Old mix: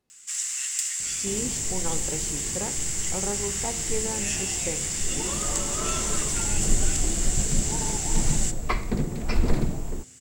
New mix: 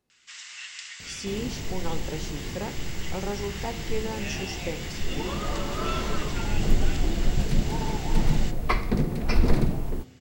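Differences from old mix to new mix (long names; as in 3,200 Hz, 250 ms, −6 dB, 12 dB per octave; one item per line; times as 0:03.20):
first sound: add low-pass filter 4,400 Hz 24 dB per octave
second sound: send +7.0 dB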